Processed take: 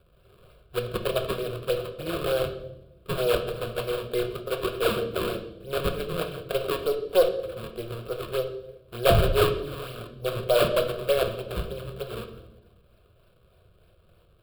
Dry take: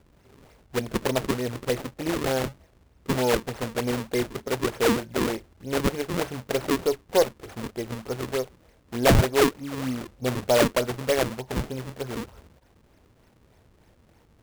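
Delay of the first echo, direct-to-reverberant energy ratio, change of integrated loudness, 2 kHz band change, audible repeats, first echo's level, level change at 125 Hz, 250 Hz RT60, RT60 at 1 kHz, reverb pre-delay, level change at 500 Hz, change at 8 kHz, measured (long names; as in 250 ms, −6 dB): no echo audible, 5.0 dB, −1.0 dB, −3.5 dB, no echo audible, no echo audible, −2.0 dB, 1.5 s, 0.70 s, 5 ms, +0.5 dB, −8.0 dB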